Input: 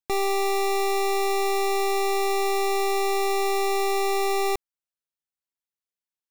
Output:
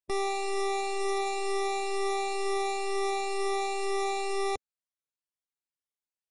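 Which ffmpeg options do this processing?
ffmpeg -i in.wav -af "afftfilt=real='re*pow(10,7/40*sin(2*PI*(1.3*log(max(b,1)*sr/1024/100)/log(2)-(2.1)*(pts-256)/sr)))':imag='im*pow(10,7/40*sin(2*PI*(1.3*log(max(b,1)*sr/1024/100)/log(2)-(2.1)*(pts-256)/sr)))':win_size=1024:overlap=0.75,volume=-6.5dB" -ar 32000 -c:a libmp3lame -b:a 40k out.mp3

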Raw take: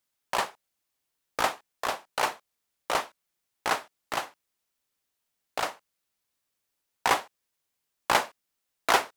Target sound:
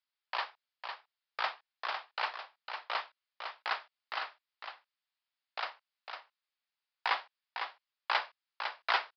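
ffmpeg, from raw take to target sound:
ffmpeg -i in.wav -filter_complex "[0:a]highpass=940,asplit=2[link_01][link_02];[link_02]aecho=0:1:504:0.447[link_03];[link_01][link_03]amix=inputs=2:normalize=0,aresample=11025,aresample=44100,volume=-5dB" out.wav

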